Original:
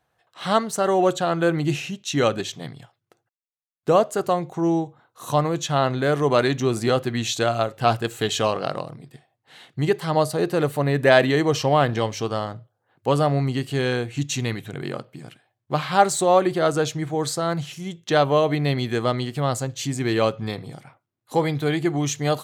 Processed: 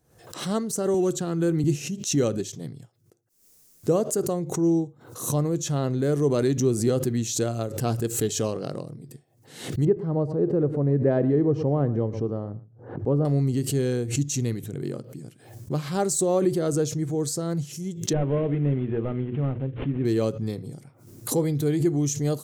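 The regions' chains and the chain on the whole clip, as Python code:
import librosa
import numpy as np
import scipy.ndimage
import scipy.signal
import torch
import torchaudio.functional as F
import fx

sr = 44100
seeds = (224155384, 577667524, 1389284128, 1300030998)

y = fx.chain(x, sr, fx.peak_eq(hz=590.0, db=-9.5, octaves=0.39),
    fx.band_squash(depth_pct=40), at=(0.94, 1.64))
y = fx.chain(y, sr, fx.lowpass(hz=1100.0, slope=12),
    fx.echo_single(ms=115, db=-17.5), at=(9.85, 13.25))
y = fx.chain(y, sr, fx.cvsd(bps=16000),
    fx.hum_notches(base_hz=60, count=8), at=(18.13, 20.05))
y = fx.band_shelf(y, sr, hz=1600.0, db=-14.0, octaves=3.0)
y = fx.pre_swell(y, sr, db_per_s=91.0)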